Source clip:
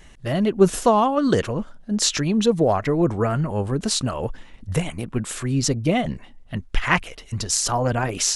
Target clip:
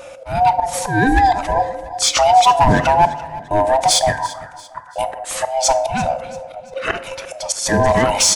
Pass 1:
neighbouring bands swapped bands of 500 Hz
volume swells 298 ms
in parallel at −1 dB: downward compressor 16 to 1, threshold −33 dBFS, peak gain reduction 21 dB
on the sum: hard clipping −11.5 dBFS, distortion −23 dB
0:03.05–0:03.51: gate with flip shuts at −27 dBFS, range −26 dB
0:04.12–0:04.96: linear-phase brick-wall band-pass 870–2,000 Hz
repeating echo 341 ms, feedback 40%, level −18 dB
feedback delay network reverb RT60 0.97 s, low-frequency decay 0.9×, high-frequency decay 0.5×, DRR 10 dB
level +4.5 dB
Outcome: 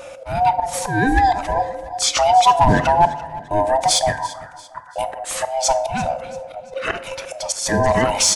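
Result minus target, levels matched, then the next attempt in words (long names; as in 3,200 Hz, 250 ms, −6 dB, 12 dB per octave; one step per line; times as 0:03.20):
downward compressor: peak gain reduction +10.5 dB
neighbouring bands swapped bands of 500 Hz
volume swells 298 ms
in parallel at −1 dB: downward compressor 16 to 1, threshold −22 dBFS, peak gain reduction 10.5 dB
on the sum: hard clipping −11.5 dBFS, distortion −19 dB
0:03.05–0:03.51: gate with flip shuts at −27 dBFS, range −26 dB
0:04.12–0:04.96: linear-phase brick-wall band-pass 870–2,000 Hz
repeating echo 341 ms, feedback 40%, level −18 dB
feedback delay network reverb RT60 0.97 s, low-frequency decay 0.9×, high-frequency decay 0.5×, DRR 10 dB
level +4.5 dB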